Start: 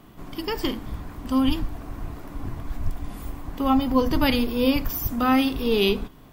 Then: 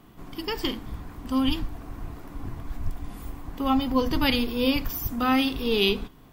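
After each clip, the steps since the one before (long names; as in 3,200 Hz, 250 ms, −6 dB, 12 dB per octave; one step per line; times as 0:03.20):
notch filter 600 Hz, Q 14
dynamic equaliser 3,500 Hz, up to +5 dB, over −39 dBFS, Q 0.85
level −3 dB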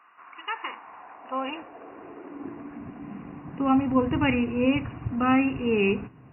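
linear-phase brick-wall low-pass 2,900 Hz
high-pass filter sweep 1,200 Hz → 110 Hz, 0:00.42–0:04.00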